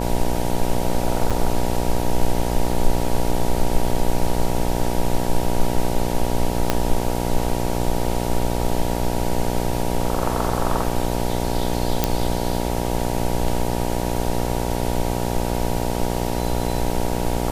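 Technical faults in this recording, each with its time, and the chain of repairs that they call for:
mains buzz 60 Hz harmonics 16 −24 dBFS
0:01.30–0:01.31: drop-out 6.3 ms
0:06.70: click −2 dBFS
0:12.04: click −2 dBFS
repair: click removal
hum removal 60 Hz, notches 16
repair the gap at 0:01.30, 6.3 ms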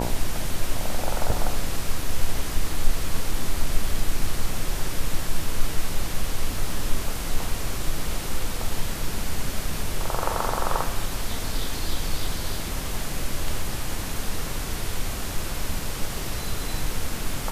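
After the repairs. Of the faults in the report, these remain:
0:06.70: click

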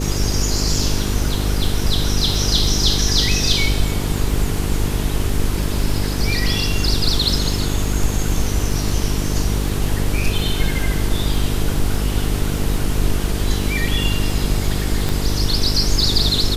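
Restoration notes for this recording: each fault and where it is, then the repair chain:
mains buzz 50 Hz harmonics 9 −22 dBFS
surface crackle 25 per second −26 dBFS
0:15.09: click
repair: click removal
hum removal 50 Hz, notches 9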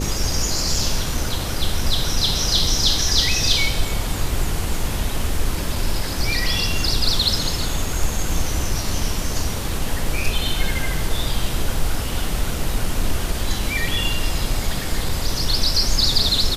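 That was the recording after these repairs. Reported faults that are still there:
none of them is left

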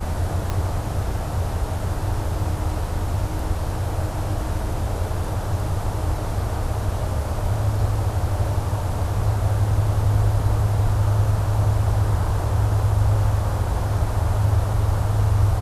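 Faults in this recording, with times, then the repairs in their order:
0:00.50: click −12 dBFS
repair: click removal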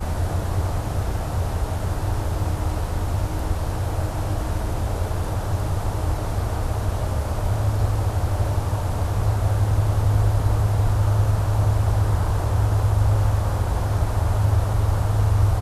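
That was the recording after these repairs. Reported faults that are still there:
0:00.50: click

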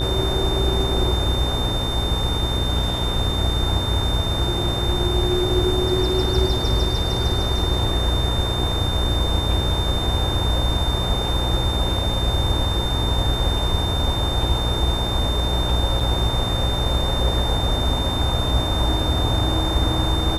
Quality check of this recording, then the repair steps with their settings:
mains buzz 60 Hz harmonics 38 −25 dBFS
whistle 3,600 Hz −26 dBFS
0:16.00–0:16.01: drop-out 5.4 ms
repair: notch filter 3,600 Hz, Q 30
hum removal 60 Hz, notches 38
repair the gap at 0:16.00, 5.4 ms

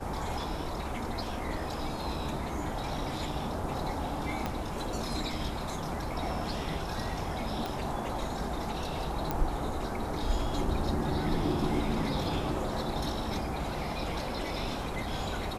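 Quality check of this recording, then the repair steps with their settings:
0:04.46: click −17 dBFS
0:07.66: click
0:09.31: click −16 dBFS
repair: click removal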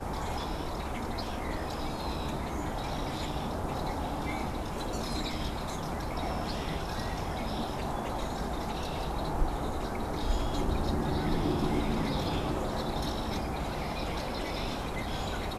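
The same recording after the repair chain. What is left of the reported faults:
0:04.46: click
0:07.66: click

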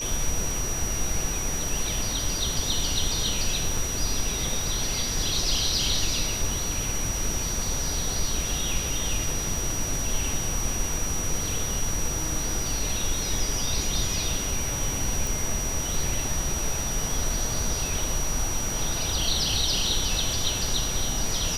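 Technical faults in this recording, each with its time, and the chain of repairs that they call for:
whistle 5,800 Hz −30 dBFS
0:03.77: drop-out 3.2 ms
0:15.27: click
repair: click removal
notch filter 5,800 Hz, Q 30
repair the gap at 0:03.77, 3.2 ms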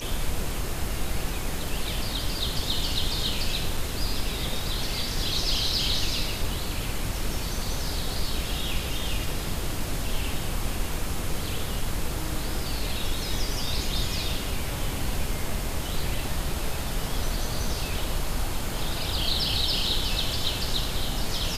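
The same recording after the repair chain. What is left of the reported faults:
none of them is left

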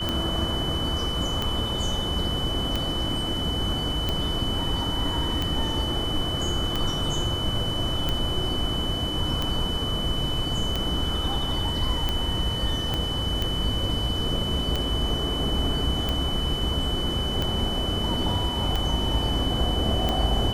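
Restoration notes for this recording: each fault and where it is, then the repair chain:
scratch tick 45 rpm −12 dBFS
whistle 3,000 Hz −29 dBFS
0:12.94: click −13 dBFS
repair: click removal
notch filter 3,000 Hz, Q 30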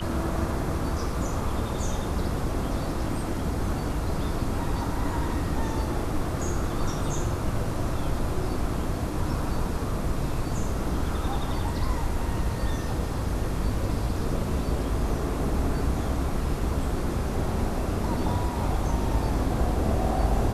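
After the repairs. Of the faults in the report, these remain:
0:12.94: click

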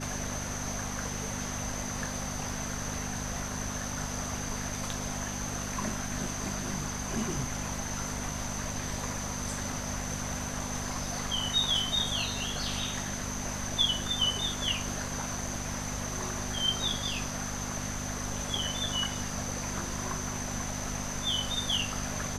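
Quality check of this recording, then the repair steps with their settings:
mains hum 50 Hz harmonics 5 −39 dBFS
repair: hum removal 50 Hz, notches 5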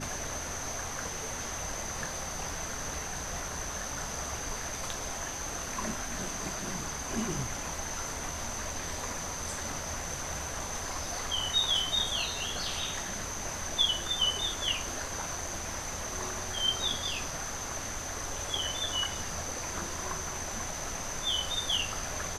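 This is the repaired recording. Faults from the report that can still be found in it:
none of them is left

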